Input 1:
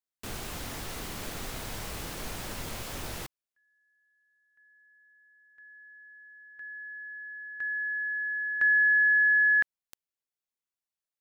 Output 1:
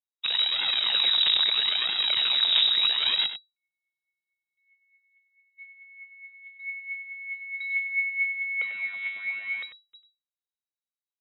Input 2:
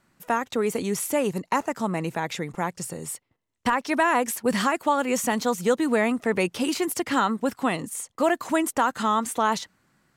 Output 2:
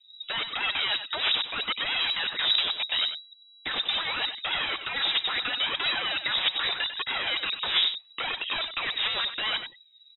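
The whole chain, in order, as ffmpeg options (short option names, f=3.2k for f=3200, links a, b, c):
-filter_complex "[0:a]aemphasis=mode=reproduction:type=riaa,afftdn=nr=20:nf=-43,equalizer=f=320:w=4.1:g=-11.5,asplit=2[a][b];[b]acompressor=threshold=-36dB:ratio=6:attack=32:release=259:knee=6:detection=rms,volume=-3dB[c];[a][c]amix=inputs=2:normalize=0,aeval=exprs='(mod(15.8*val(0)+1,2)-1)/15.8':c=same,aphaser=in_gain=1:out_gain=1:delay=1.7:decay=0.6:speed=0.77:type=triangular,aecho=1:1:96:0.299,lowpass=f=3.3k:t=q:w=0.5098,lowpass=f=3.3k:t=q:w=0.6013,lowpass=f=3.3k:t=q:w=0.9,lowpass=f=3.3k:t=q:w=2.563,afreqshift=-3900"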